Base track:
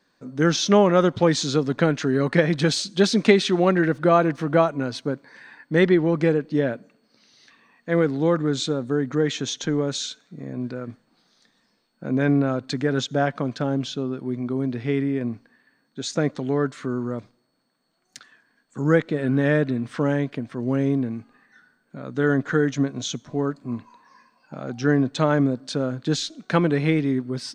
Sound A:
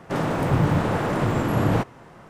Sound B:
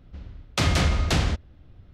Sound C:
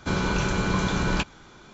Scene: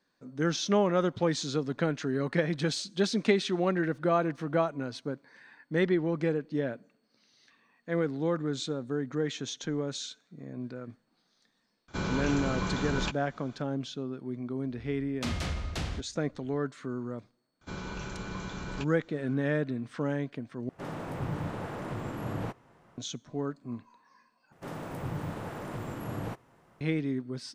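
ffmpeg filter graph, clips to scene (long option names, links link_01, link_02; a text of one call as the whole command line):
ffmpeg -i bed.wav -i cue0.wav -i cue1.wav -i cue2.wav -filter_complex "[3:a]asplit=2[link_01][link_02];[1:a]asplit=2[link_03][link_04];[0:a]volume=-9dB[link_05];[link_04]highshelf=frequency=9600:gain=10[link_06];[link_05]asplit=3[link_07][link_08][link_09];[link_07]atrim=end=20.694[link_10];[link_03]atrim=end=2.29,asetpts=PTS-STARTPTS,volume=-14dB[link_11];[link_08]atrim=start=22.976:end=24.524[link_12];[link_06]atrim=end=2.29,asetpts=PTS-STARTPTS,volume=-15.5dB[link_13];[link_09]atrim=start=26.806[link_14];[link_01]atrim=end=1.73,asetpts=PTS-STARTPTS,volume=-7.5dB,afade=type=in:duration=0.004:curve=hsin,afade=type=out:start_time=1.726:duration=0.004:curve=hsin,adelay=11880[link_15];[2:a]atrim=end=1.93,asetpts=PTS-STARTPTS,volume=-12dB,afade=type=in:duration=0.004:curve=hsin,afade=type=out:start_time=1.926:duration=0.004:curve=hsin,adelay=14650[link_16];[link_02]atrim=end=1.73,asetpts=PTS-STARTPTS,volume=-14dB,afade=type=in:duration=0.004:curve=hsin,afade=type=out:start_time=1.726:duration=0.004:curve=hsin,adelay=17610[link_17];[link_10][link_11]acrossfade=duration=0.004:curve1=hsin:curve2=hsin[link_18];[link_18][link_12]acrossfade=duration=0.004:curve1=hsin:curve2=hsin[link_19];[link_19][link_13]acrossfade=duration=0.004:curve1=hsin:curve2=hsin[link_20];[link_20][link_14]acrossfade=duration=0.004:curve1=hsin:curve2=hsin[link_21];[link_21][link_15][link_16][link_17]amix=inputs=4:normalize=0" out.wav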